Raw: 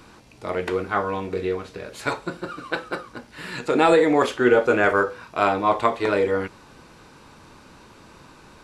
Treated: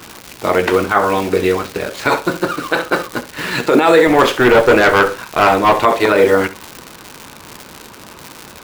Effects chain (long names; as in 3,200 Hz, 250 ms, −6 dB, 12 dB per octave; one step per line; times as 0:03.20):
running median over 5 samples
low-shelf EQ 140 Hz −4 dB
in parallel at −6.5 dB: bit-depth reduction 6 bits, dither none
on the sum: high-pass filter 53 Hz
0:04.07–0:05.85: tube saturation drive 13 dB, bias 0.4
harmonic and percussive parts rebalanced percussive +6 dB
surface crackle 190 per second −25 dBFS
on a send: flutter between parallel walls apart 11.3 metres, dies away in 0.26 s
on the sum: brickwall limiter −8 dBFS, peak gain reduction 11 dB
level +6.5 dB